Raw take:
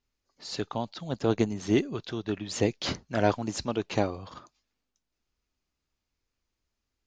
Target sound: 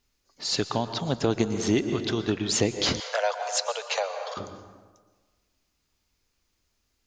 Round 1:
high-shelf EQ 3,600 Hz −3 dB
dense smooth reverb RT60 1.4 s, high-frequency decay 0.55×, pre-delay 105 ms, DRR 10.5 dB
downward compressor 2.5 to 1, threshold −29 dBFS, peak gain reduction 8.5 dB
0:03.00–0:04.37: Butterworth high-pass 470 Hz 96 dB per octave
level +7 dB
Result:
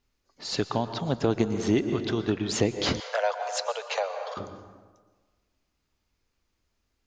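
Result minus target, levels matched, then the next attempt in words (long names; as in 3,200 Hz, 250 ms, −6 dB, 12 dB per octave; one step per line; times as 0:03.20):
8,000 Hz band −5.0 dB
high-shelf EQ 3,600 Hz +6 dB
dense smooth reverb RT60 1.4 s, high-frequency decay 0.55×, pre-delay 105 ms, DRR 10.5 dB
downward compressor 2.5 to 1, threshold −29 dBFS, peak gain reduction 8.5 dB
0:03.00–0:04.37: Butterworth high-pass 470 Hz 96 dB per octave
level +7 dB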